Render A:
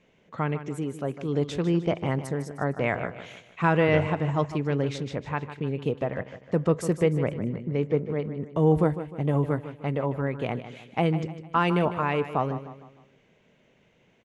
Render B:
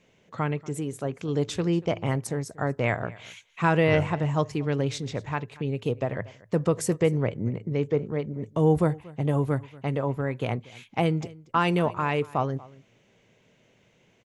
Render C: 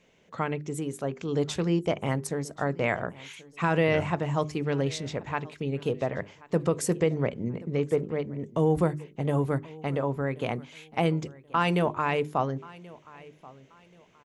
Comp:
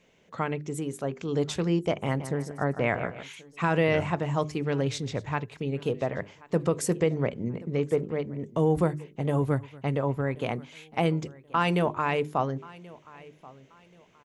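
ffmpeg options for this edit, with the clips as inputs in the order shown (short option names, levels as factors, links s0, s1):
-filter_complex "[1:a]asplit=2[s0][s1];[2:a]asplit=4[s2][s3][s4][s5];[s2]atrim=end=2.202[s6];[0:a]atrim=start=2.198:end=3.232[s7];[s3]atrim=start=3.228:end=4.872[s8];[s0]atrim=start=4.868:end=5.572[s9];[s4]atrim=start=5.568:end=9.422[s10];[s1]atrim=start=9.418:end=10.352[s11];[s5]atrim=start=10.348[s12];[s6][s7]acrossfade=d=0.004:c1=hsin:c2=hsin[s13];[s13][s8]acrossfade=d=0.004:c1=hsin:c2=hsin[s14];[s14][s9]acrossfade=d=0.004:c1=hsin:c2=hsin[s15];[s15][s10]acrossfade=d=0.004:c1=hsin:c2=hsin[s16];[s16][s11]acrossfade=d=0.004:c1=hsin:c2=hsin[s17];[s17][s12]acrossfade=d=0.004:c1=hsin:c2=hsin"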